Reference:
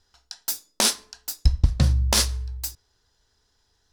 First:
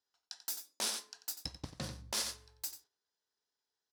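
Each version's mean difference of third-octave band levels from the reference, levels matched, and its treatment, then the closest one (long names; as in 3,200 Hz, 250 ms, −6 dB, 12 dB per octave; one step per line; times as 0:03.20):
7.0 dB: noise gate −52 dBFS, range −12 dB
high-pass filter 270 Hz 12 dB per octave
single-tap delay 90 ms −13 dB
brickwall limiter −16 dBFS, peak gain reduction 10 dB
level −8.5 dB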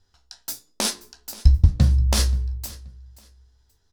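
4.0 dB: low-shelf EQ 370 Hz +9 dB
hum removal 59.75 Hz, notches 8
flanger 1.1 Hz, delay 9.7 ms, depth 6.4 ms, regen +55%
on a send: repeating echo 529 ms, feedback 24%, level −19.5 dB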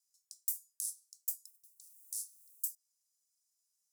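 19.0 dB: noise that follows the level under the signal 28 dB
downward compressor 6 to 1, threshold −32 dBFS, peak gain reduction 19 dB
inverse Chebyshev high-pass filter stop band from 1,500 Hz, stop band 80 dB
level +2 dB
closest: second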